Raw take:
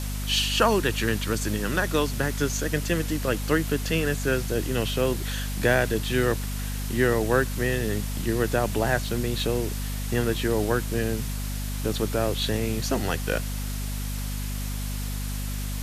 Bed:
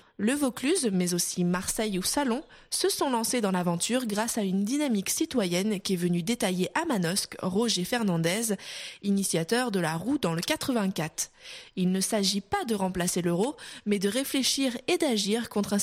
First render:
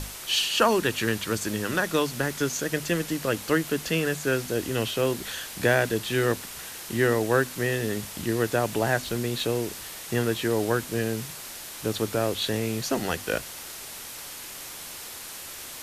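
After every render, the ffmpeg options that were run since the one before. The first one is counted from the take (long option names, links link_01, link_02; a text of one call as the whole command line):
ffmpeg -i in.wav -af "bandreject=frequency=50:width_type=h:width=6,bandreject=frequency=100:width_type=h:width=6,bandreject=frequency=150:width_type=h:width=6,bandreject=frequency=200:width_type=h:width=6,bandreject=frequency=250:width_type=h:width=6" out.wav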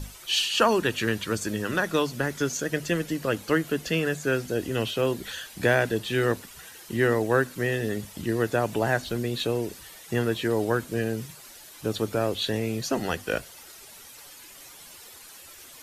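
ffmpeg -i in.wav -af "afftdn=noise_reduction=11:noise_floor=-40" out.wav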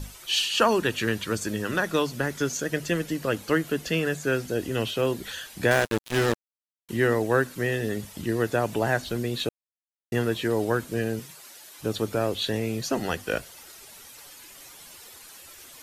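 ffmpeg -i in.wav -filter_complex "[0:a]asettb=1/sr,asplit=3[link_01][link_02][link_03];[link_01]atrim=end=5.714[link_04];[link_02]atrim=start=5.71:end=6.89,asetpts=PTS-STARTPTS,afade=type=in:duration=0.004:curve=qsin,afade=type=out:start_time=1.176:duration=0.004:curve=qsin,acrusher=bits=3:mix=0:aa=0.5[link_05];[link_03]atrim=start=6.886[link_06];[link_04][link_05]acrossfade=duration=0.004:curve1=hsin:curve2=qsin[link_07];[link_07][link_06]acrossfade=duration=0.004:curve1=qsin:curve2=hsin,asettb=1/sr,asplit=3[link_08][link_09][link_10];[link_08]atrim=end=11.194[link_11];[link_09]atrim=start=11.19:end=11.79,asetpts=PTS-STARTPTS,afade=type=in:duration=0.004:curve=qsin,afade=type=out:start_time=0.596:duration=0.004:curve=qsin,highpass=frequency=320:poles=1[link_12];[link_10]atrim=start=11.786[link_13];[link_11][link_12]acrossfade=duration=0.004:curve1=hsin:curve2=qsin[link_14];[link_14][link_13]acrossfade=duration=0.004:curve1=qsin:curve2=hsin,asplit=3[link_15][link_16][link_17];[link_15]atrim=end=9.49,asetpts=PTS-STARTPTS,afade=type=out:start_time=9.486:duration=0.004:curve=hsin[link_18];[link_16]atrim=start=9.49:end=10.12,asetpts=PTS-STARTPTS,volume=0[link_19];[link_17]atrim=start=10.12,asetpts=PTS-STARTPTS,afade=type=in:duration=0.004:curve=hsin[link_20];[link_18][link_19][link_20]concat=n=3:v=0:a=1" out.wav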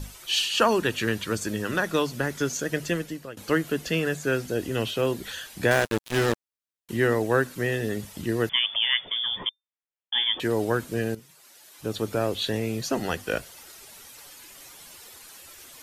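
ffmpeg -i in.wav -filter_complex "[0:a]asettb=1/sr,asplit=3[link_01][link_02][link_03];[link_01]atrim=end=8.494[link_04];[link_02]atrim=start=8.49:end=10.4,asetpts=PTS-STARTPTS,afade=type=in:duration=0.004:curve=qsin,afade=type=out:start_time=1.906:duration=0.004:curve=qsin,lowpass=frequency=3100:width_type=q:width=0.5098,lowpass=frequency=3100:width_type=q:width=0.6013,lowpass=frequency=3100:width_type=q:width=0.9,lowpass=frequency=3100:width_type=q:width=2.563,afreqshift=-3600[link_05];[link_03]atrim=start=10.396[link_06];[link_04][link_05]acrossfade=duration=0.004:curve1=hsin:curve2=qsin[link_07];[link_07][link_06]acrossfade=duration=0.004:curve1=qsin:curve2=hsin,asplit=3[link_08][link_09][link_10];[link_08]atrim=end=3.37,asetpts=PTS-STARTPTS,afade=type=out:start_time=2.88:duration=0.49:silence=0.0794328[link_11];[link_09]atrim=start=3.37:end=11.15,asetpts=PTS-STARTPTS,afade=type=in:duration=0.004:curve=hsin:silence=0.0794328,afade=type=out:start_time=7.776:duration=0.004:curve=hsin:silence=0.223872[link_12];[link_10]atrim=start=11.15,asetpts=PTS-STARTPTS,afade=type=in:duration=1.02:silence=0.223872[link_13];[link_11][link_12][link_13]concat=n=3:v=0:a=1" out.wav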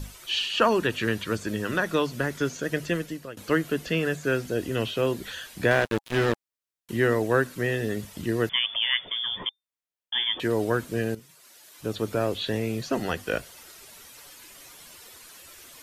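ffmpeg -i in.wav -filter_complex "[0:a]bandreject=frequency=820:width=16,acrossover=split=4100[link_01][link_02];[link_02]acompressor=threshold=-44dB:ratio=4:attack=1:release=60[link_03];[link_01][link_03]amix=inputs=2:normalize=0" out.wav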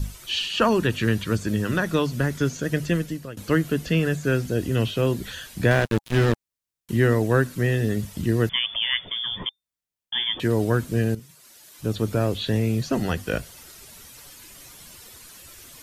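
ffmpeg -i in.wav -af "bass=frequency=250:gain=10,treble=frequency=4000:gain=3" out.wav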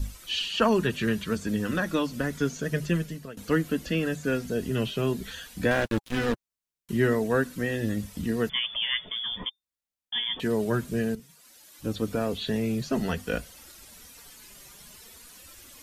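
ffmpeg -i in.wav -af "flanger=delay=3.5:depth=1.6:regen=-28:speed=0.51:shape=triangular" out.wav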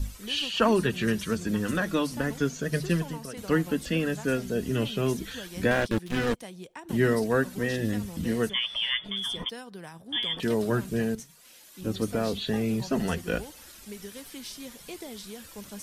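ffmpeg -i in.wav -i bed.wav -filter_complex "[1:a]volume=-15.5dB[link_01];[0:a][link_01]amix=inputs=2:normalize=0" out.wav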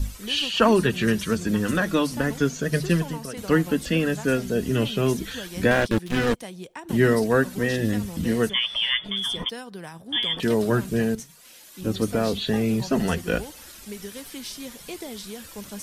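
ffmpeg -i in.wav -af "volume=4.5dB" out.wav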